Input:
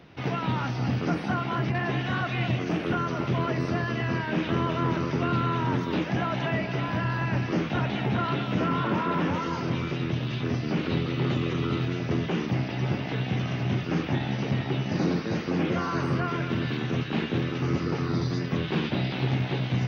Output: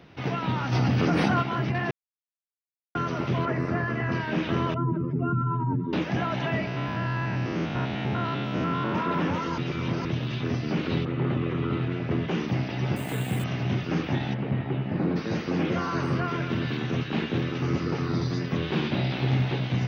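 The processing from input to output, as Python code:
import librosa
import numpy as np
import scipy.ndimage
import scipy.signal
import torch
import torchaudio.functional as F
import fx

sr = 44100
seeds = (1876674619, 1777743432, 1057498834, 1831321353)

y = fx.env_flatten(x, sr, amount_pct=100, at=(0.71, 1.41), fade=0.02)
y = fx.high_shelf_res(y, sr, hz=2500.0, db=-8.0, q=1.5, at=(3.45, 4.12))
y = fx.spec_expand(y, sr, power=2.2, at=(4.74, 5.93))
y = fx.spec_steps(y, sr, hold_ms=100, at=(6.67, 8.95))
y = fx.lowpass(y, sr, hz=fx.line((11.04, 1800.0), (12.27, 3300.0)), slope=12, at=(11.04, 12.27), fade=0.02)
y = fx.resample_bad(y, sr, factor=4, down='filtered', up='hold', at=(12.96, 13.44))
y = fx.air_absorb(y, sr, metres=450.0, at=(14.33, 15.15), fade=0.02)
y = fx.room_flutter(y, sr, wall_m=10.6, rt60_s=0.42, at=(18.61, 19.54), fade=0.02)
y = fx.edit(y, sr, fx.silence(start_s=1.91, length_s=1.04),
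    fx.reverse_span(start_s=9.58, length_s=0.47), tone=tone)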